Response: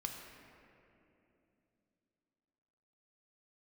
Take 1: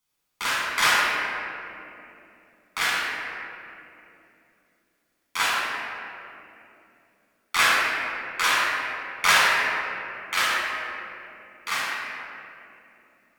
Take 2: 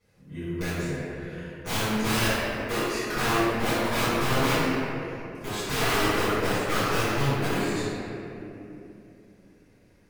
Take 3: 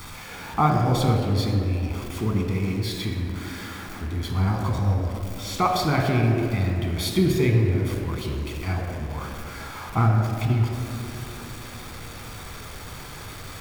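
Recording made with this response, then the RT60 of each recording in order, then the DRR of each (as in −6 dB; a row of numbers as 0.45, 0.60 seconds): 3; 2.9, 2.9, 2.9 seconds; −7.0, −17.0, 1.5 decibels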